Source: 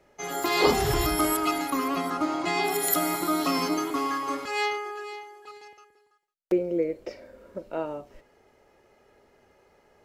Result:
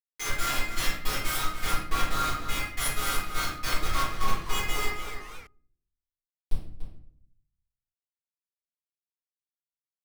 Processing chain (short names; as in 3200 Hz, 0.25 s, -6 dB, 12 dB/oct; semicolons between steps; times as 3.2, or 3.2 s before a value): steep high-pass 1200 Hz 72 dB/oct; level quantiser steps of 20 dB; overloaded stage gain 33.5 dB; step gate "..x.xx..x" 157 bpm -12 dB; Schmitt trigger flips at -45 dBFS; outdoor echo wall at 50 m, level -8 dB; shoebox room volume 94 m³, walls mixed, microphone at 3.3 m; 3.46–5.47 warbling echo 0.259 s, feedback 63%, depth 220 cents, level -14 dB; gain +6.5 dB